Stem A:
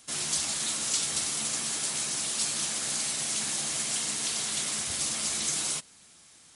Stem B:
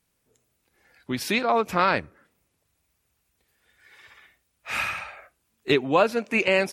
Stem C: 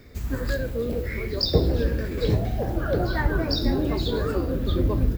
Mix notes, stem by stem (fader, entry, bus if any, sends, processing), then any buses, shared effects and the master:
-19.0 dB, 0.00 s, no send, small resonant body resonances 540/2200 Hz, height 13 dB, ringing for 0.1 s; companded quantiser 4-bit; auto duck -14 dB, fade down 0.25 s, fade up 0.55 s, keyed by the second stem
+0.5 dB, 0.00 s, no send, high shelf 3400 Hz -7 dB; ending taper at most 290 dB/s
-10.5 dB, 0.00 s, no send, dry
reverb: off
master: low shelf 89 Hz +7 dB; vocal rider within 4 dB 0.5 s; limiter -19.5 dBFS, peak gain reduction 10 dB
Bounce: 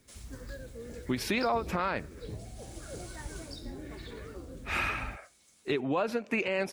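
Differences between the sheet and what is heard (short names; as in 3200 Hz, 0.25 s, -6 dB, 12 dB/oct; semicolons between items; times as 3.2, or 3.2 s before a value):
stem C -10.5 dB -> -17.5 dB; master: missing low shelf 89 Hz +7 dB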